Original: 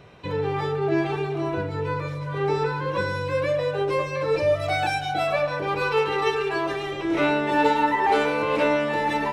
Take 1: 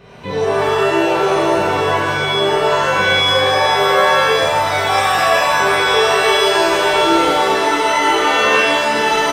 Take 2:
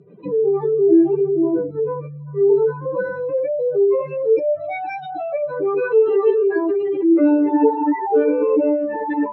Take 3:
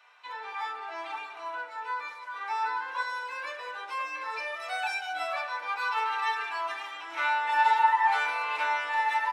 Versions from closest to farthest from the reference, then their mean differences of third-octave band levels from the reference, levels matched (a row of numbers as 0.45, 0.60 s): 1, 3, 2; 8.5, 11.5, 18.5 dB